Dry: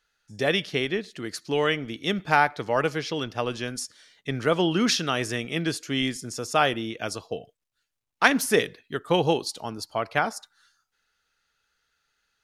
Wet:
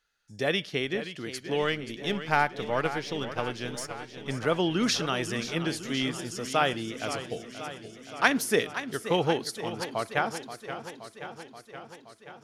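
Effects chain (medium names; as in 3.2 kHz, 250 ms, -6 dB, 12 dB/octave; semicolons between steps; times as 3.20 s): 1.62–4.31 s: partial rectifier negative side -3 dB; modulated delay 526 ms, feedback 69%, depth 115 cents, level -11.5 dB; trim -3.5 dB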